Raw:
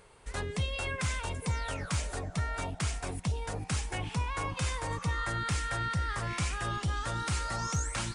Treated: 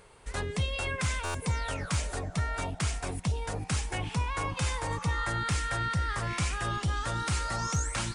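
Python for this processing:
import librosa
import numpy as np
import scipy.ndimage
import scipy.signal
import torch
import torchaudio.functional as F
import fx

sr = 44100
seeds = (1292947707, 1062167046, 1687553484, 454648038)

y = fx.dmg_tone(x, sr, hz=860.0, level_db=-48.0, at=(4.59, 5.43), fade=0.02)
y = fx.buffer_glitch(y, sr, at_s=(1.24,), block=512, repeats=8)
y = y * 10.0 ** (2.0 / 20.0)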